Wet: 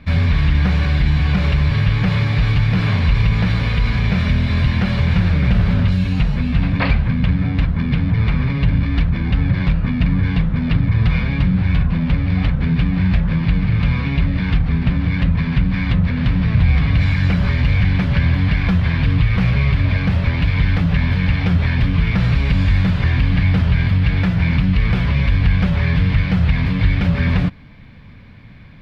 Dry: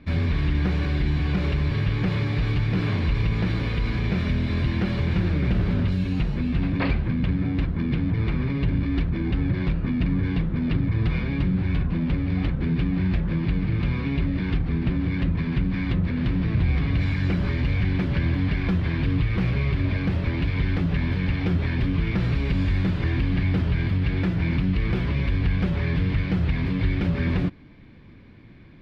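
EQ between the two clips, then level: bell 340 Hz -14 dB 0.67 oct; +8.5 dB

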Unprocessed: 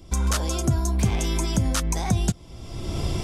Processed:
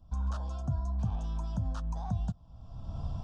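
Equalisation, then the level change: tape spacing loss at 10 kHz 31 dB; bell 530 Hz -5.5 dB 0.25 oct; fixed phaser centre 880 Hz, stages 4; -8.0 dB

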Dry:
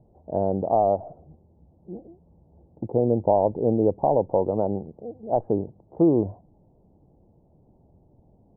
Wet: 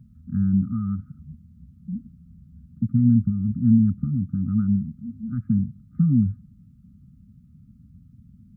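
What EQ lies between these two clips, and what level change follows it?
HPF 42 Hz; brick-wall FIR band-stop 260–1200 Hz; bell 530 Hz +4.5 dB 2.5 oct; +8.5 dB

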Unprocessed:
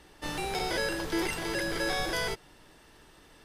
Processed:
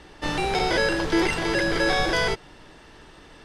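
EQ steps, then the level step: air absorption 68 m; +9.0 dB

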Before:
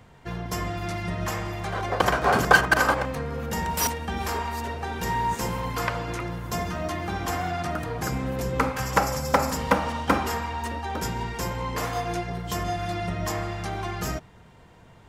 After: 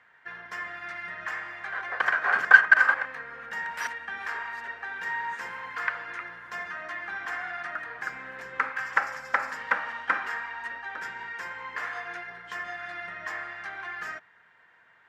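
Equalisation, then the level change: band-pass 1700 Hz, Q 4.3; +6.5 dB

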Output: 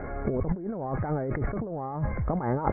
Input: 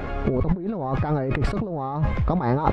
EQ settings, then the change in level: rippled Chebyshev low-pass 2200 Hz, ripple 3 dB; air absorption 170 m; -3.5 dB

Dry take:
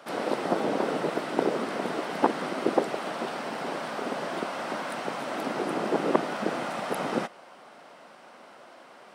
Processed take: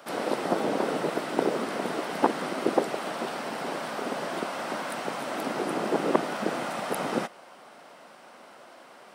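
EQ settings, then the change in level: high shelf 9000 Hz +8.5 dB; 0.0 dB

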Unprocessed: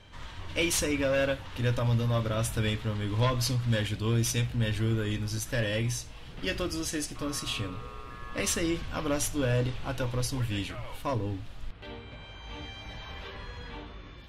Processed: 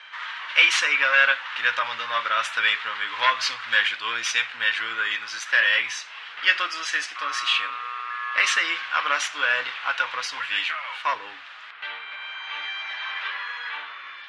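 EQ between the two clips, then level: resonant high-pass 1300 Hz, resonance Q 1.5; air absorption 120 m; bell 2000 Hz +9.5 dB 2.4 oct; +6.0 dB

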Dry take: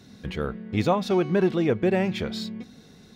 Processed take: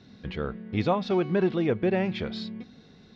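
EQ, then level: LPF 4900 Hz 24 dB/oct; -2.5 dB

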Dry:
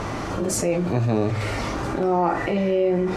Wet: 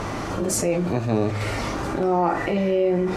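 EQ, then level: high shelf 11000 Hz +5 dB; notches 60/120 Hz; 0.0 dB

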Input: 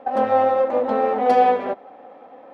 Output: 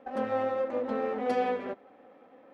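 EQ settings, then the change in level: bell 770 Hz -10 dB 1.1 oct; bell 3800 Hz -2.5 dB; -6.0 dB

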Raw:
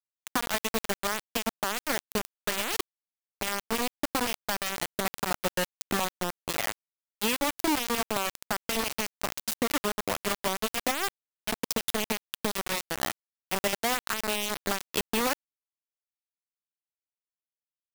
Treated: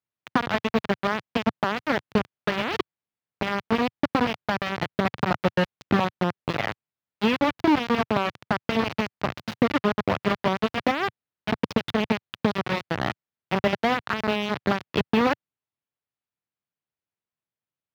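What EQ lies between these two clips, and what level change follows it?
HPF 74 Hz; air absorption 300 m; bell 120 Hz +8.5 dB 1.5 oct; +7.0 dB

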